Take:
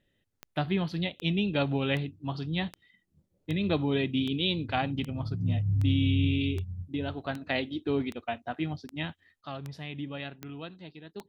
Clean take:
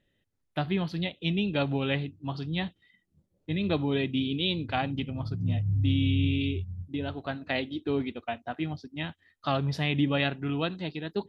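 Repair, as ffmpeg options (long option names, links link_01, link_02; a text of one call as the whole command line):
ffmpeg -i in.wav -af "adeclick=threshold=4,asetnsamples=nb_out_samples=441:pad=0,asendcmd='9.41 volume volume 11.5dB',volume=0dB" out.wav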